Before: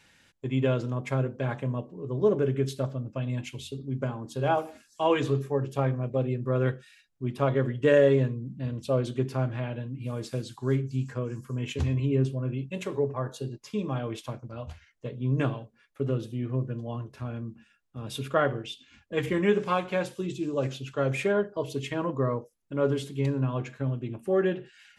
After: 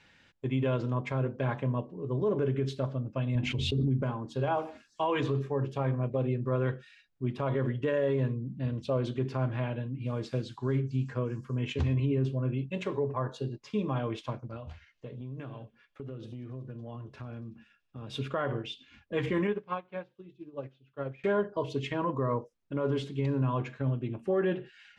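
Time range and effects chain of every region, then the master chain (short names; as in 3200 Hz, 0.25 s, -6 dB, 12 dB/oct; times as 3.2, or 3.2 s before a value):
3.35–4.03 tilt -2 dB/oct + backwards sustainer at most 24 dB/s
14.56–18.13 compressor, threshold -38 dBFS + thin delay 94 ms, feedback 75%, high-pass 4400 Hz, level -16.5 dB
19.47–21.24 air absorption 160 m + upward expander 2.5:1, over -35 dBFS
whole clip: LPF 4300 Hz 12 dB/oct; dynamic EQ 1000 Hz, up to +7 dB, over -52 dBFS, Q 7.7; limiter -20.5 dBFS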